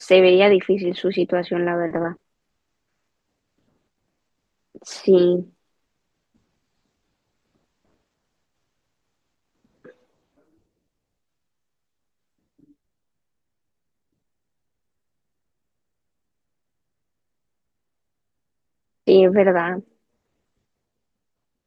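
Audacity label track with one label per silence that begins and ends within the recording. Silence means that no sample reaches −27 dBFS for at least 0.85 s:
2.120000	4.890000	silence
5.420000	19.080000	silence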